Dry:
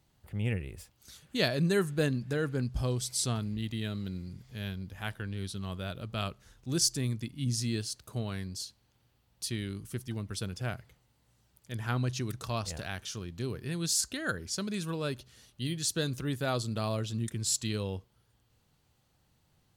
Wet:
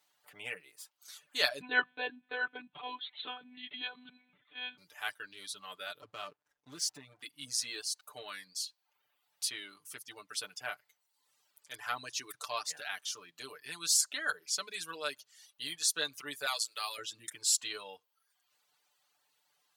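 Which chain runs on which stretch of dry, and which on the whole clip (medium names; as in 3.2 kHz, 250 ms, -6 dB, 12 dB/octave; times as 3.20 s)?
1.61–4.78 s: comb 4.9 ms, depth 93% + monotone LPC vocoder at 8 kHz 250 Hz
6.00–7.22 s: tilt EQ -2.5 dB/octave + compression 5:1, threshold -28 dBFS + hysteresis with a dead band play -47 dBFS
16.46–16.98 s: high-pass 850 Hz 6 dB/octave + tilt EQ +2 dB/octave
whole clip: high-pass 860 Hz 12 dB/octave; comb 6.8 ms, depth 85%; reverb removal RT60 0.75 s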